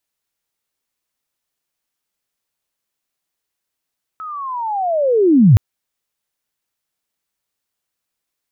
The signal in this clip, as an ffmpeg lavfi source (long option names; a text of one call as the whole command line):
ffmpeg -f lavfi -i "aevalsrc='pow(10,(-26.5+22.5*t/1.37)/20)*sin(2*PI*(1300*t-1209*t*t/(2*1.37)))':duration=1.37:sample_rate=44100" out.wav